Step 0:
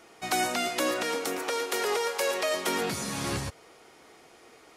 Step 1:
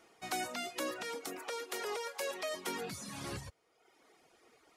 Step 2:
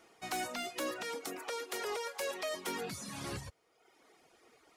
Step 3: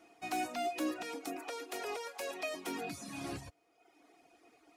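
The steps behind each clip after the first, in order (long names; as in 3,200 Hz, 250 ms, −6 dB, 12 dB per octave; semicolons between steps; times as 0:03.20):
reverb reduction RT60 1 s; level −9 dB
hard clipping −32 dBFS, distortion −19 dB; level +1 dB
hollow resonant body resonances 300/700/2,500 Hz, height 14 dB, ringing for 75 ms; level −4 dB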